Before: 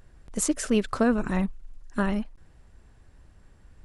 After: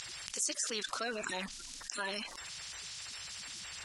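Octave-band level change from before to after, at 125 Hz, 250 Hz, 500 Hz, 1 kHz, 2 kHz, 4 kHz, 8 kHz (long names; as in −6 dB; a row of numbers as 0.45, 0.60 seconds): −21.5, −22.5, −13.5, −8.5, −3.5, +5.0, −2.0 decibels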